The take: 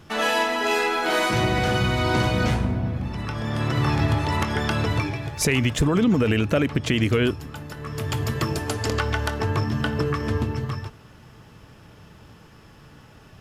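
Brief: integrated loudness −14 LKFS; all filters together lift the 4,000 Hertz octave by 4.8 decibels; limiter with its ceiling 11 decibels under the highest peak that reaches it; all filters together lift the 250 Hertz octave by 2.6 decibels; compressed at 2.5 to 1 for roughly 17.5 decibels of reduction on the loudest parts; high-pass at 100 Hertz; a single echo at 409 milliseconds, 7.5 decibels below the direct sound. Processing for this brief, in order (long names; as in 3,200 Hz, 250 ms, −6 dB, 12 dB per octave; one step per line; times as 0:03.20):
high-pass filter 100 Hz
parametric band 250 Hz +3.5 dB
parametric band 4,000 Hz +6.5 dB
downward compressor 2.5 to 1, threshold −41 dBFS
brickwall limiter −30.5 dBFS
single-tap delay 409 ms −7.5 dB
level +25.5 dB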